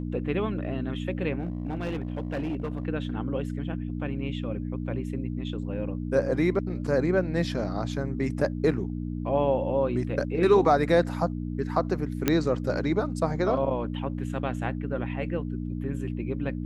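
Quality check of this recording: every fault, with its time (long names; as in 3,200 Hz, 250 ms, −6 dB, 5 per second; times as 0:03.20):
mains hum 60 Hz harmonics 5 −32 dBFS
0:01.40–0:02.85: clipping −26 dBFS
0:12.28: click −7 dBFS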